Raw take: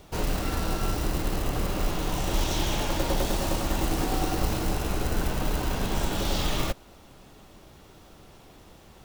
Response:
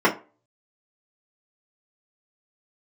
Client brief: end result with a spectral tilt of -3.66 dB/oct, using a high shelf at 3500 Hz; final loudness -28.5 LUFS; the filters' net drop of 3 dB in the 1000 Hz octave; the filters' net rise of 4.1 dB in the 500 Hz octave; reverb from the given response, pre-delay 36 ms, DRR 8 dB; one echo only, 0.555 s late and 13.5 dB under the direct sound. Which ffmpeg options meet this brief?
-filter_complex "[0:a]equalizer=f=500:t=o:g=7,equalizer=f=1k:t=o:g=-8,highshelf=f=3.5k:g=7.5,aecho=1:1:555:0.211,asplit=2[a][b];[1:a]atrim=start_sample=2205,adelay=36[c];[b][c]afir=irnorm=-1:irlink=0,volume=-28dB[d];[a][d]amix=inputs=2:normalize=0,volume=-3dB"

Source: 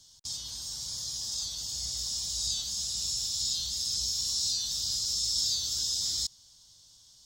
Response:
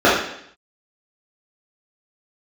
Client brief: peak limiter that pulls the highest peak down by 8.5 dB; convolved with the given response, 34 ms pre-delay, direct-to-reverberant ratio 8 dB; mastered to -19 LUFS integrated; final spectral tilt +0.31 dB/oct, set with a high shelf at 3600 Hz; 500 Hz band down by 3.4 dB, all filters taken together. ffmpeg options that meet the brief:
-filter_complex "[0:a]equalizer=f=500:t=o:g=-4.5,highshelf=f=3.6k:g=3.5,alimiter=limit=-23.5dB:level=0:latency=1,asplit=2[a][b];[1:a]atrim=start_sample=2205,adelay=34[c];[b][c]afir=irnorm=-1:irlink=0,volume=-36dB[d];[a][d]amix=inputs=2:normalize=0,volume=11.5dB"

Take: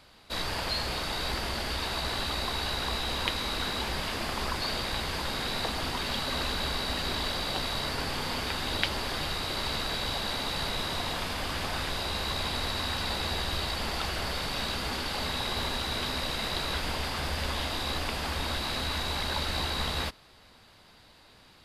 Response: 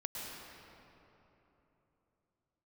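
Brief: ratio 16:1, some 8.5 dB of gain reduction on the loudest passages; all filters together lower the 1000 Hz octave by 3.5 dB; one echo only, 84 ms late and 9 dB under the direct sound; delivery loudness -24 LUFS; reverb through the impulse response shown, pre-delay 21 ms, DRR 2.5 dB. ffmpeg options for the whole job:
-filter_complex "[0:a]equalizer=f=1k:t=o:g=-4.5,acompressor=threshold=-33dB:ratio=16,aecho=1:1:84:0.355,asplit=2[a][b];[1:a]atrim=start_sample=2205,adelay=21[c];[b][c]afir=irnorm=-1:irlink=0,volume=-3.5dB[d];[a][d]amix=inputs=2:normalize=0,volume=10dB"

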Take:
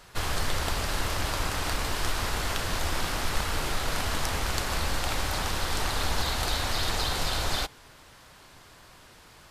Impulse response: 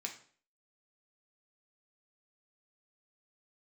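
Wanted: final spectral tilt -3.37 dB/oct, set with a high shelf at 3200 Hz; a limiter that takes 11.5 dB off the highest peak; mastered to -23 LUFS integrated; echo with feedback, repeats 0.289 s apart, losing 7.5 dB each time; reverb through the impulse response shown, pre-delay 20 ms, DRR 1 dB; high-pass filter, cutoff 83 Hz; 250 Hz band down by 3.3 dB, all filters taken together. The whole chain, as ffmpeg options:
-filter_complex "[0:a]highpass=83,equalizer=f=250:t=o:g=-4.5,highshelf=f=3.2k:g=-3,alimiter=level_in=0.5dB:limit=-24dB:level=0:latency=1,volume=-0.5dB,aecho=1:1:289|578|867|1156|1445:0.422|0.177|0.0744|0.0312|0.0131,asplit=2[a][b];[1:a]atrim=start_sample=2205,adelay=20[c];[b][c]afir=irnorm=-1:irlink=0,volume=-0.5dB[d];[a][d]amix=inputs=2:normalize=0,volume=8dB"

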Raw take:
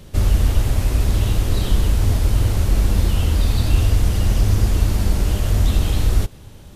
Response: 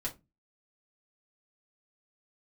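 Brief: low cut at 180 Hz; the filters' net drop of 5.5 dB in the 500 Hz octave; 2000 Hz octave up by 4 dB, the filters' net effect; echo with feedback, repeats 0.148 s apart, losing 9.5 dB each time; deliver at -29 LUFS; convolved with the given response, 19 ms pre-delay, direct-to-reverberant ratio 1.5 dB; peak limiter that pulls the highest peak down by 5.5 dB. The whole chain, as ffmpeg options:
-filter_complex "[0:a]highpass=180,equalizer=f=500:t=o:g=-7.5,equalizer=f=2k:t=o:g=5.5,alimiter=limit=-20dB:level=0:latency=1,aecho=1:1:148|296|444|592:0.335|0.111|0.0365|0.012,asplit=2[a][b];[1:a]atrim=start_sample=2205,adelay=19[c];[b][c]afir=irnorm=-1:irlink=0,volume=-3dB[d];[a][d]amix=inputs=2:normalize=0,volume=-2.5dB"

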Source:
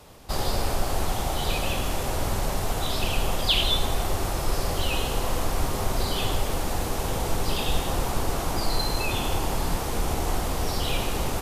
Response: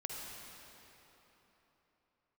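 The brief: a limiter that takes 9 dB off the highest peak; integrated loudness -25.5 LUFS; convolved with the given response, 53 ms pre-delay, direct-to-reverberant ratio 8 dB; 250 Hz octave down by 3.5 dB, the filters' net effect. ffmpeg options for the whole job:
-filter_complex "[0:a]equalizer=f=250:t=o:g=-5,alimiter=limit=-17.5dB:level=0:latency=1,asplit=2[a][b];[1:a]atrim=start_sample=2205,adelay=53[c];[b][c]afir=irnorm=-1:irlink=0,volume=-8dB[d];[a][d]amix=inputs=2:normalize=0,volume=3.5dB"

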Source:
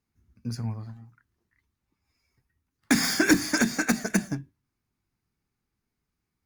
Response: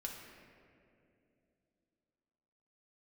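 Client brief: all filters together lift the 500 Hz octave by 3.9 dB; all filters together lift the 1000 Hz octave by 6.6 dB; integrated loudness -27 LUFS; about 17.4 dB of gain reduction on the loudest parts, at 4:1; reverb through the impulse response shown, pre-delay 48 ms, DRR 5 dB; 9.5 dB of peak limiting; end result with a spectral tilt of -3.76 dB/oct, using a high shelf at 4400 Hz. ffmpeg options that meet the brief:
-filter_complex "[0:a]equalizer=f=500:t=o:g=3.5,equalizer=f=1k:t=o:g=7.5,highshelf=f=4.4k:g=7.5,acompressor=threshold=-35dB:ratio=4,alimiter=level_in=1dB:limit=-24dB:level=0:latency=1,volume=-1dB,asplit=2[a][b];[1:a]atrim=start_sample=2205,adelay=48[c];[b][c]afir=irnorm=-1:irlink=0,volume=-3.5dB[d];[a][d]amix=inputs=2:normalize=0,volume=11dB"

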